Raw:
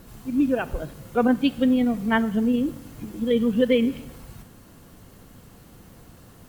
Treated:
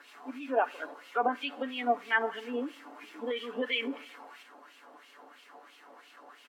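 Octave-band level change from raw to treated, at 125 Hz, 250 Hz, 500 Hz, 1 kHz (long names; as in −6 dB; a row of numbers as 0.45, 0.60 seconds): below −25 dB, −18.5 dB, −9.0 dB, 0.0 dB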